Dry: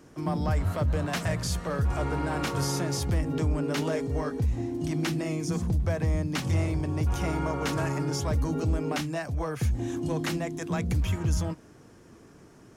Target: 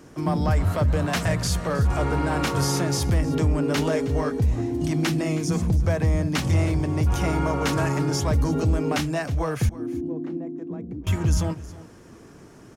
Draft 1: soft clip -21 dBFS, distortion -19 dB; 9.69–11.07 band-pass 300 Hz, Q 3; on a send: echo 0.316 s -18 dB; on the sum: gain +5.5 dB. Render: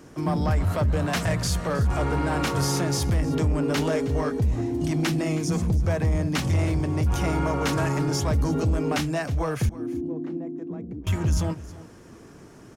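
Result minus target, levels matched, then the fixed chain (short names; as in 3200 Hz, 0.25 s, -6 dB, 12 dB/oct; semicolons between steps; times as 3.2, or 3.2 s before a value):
soft clip: distortion +14 dB
soft clip -12.5 dBFS, distortion -33 dB; 9.69–11.07 band-pass 300 Hz, Q 3; on a send: echo 0.316 s -18 dB; on the sum: gain +5.5 dB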